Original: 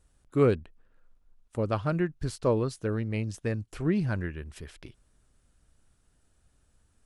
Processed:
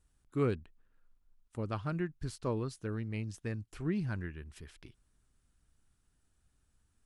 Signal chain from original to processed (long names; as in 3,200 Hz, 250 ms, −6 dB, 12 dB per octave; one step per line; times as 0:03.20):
parametric band 560 Hz −6.5 dB 0.71 octaves
level −6.5 dB